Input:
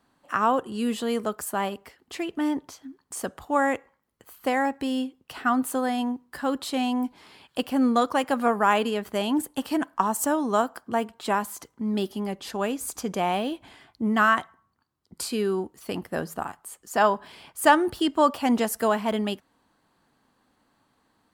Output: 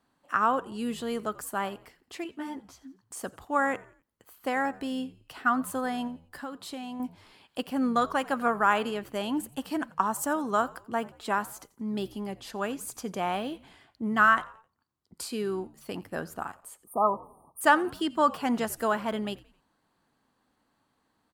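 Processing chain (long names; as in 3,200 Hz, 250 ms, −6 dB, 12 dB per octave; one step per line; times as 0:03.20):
dynamic equaliser 1,400 Hz, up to +7 dB, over −38 dBFS, Q 2
0:06.07–0:07.00: downward compressor 6 to 1, threshold −30 dBFS, peak gain reduction 10.5 dB
0:16.84–0:17.61: linear-phase brick-wall band-stop 1,300–8,600 Hz
echo with shifted repeats 87 ms, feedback 43%, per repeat −77 Hz, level −21.5 dB
0:02.24–0:02.78: string-ensemble chorus
level −5.5 dB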